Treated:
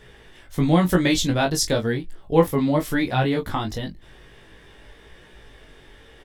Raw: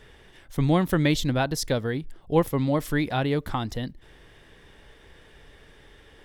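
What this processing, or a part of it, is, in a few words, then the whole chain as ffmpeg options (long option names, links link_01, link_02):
double-tracked vocal: -filter_complex "[0:a]asettb=1/sr,asplit=3[link_01][link_02][link_03];[link_01]atrim=end=0.774[link_04];[link_02]atrim=start=0.77:end=1.95,asetpts=PTS-STARTPTS,afade=type=in:duration=0.004:curve=qsin,afade=type=out:start_time=1.176:duration=0.004:curve=qsin,equalizer=frequency=7200:width_type=o:width=1.3:gain=5[link_05];[link_03]atrim=start=1.946[link_06];[link_04][link_05]acrossfade=duration=0.004:curve1=hsin:curve2=qsin[link_07];[link_07][link_06]acrossfade=duration=0.004:curve1=qsin:curve2=hsin,asplit=2[link_08][link_09];[link_09]adelay=22,volume=-8.5dB[link_10];[link_08][link_10]amix=inputs=2:normalize=0,flanger=delay=16.5:depth=2.7:speed=0.95,volume=6dB"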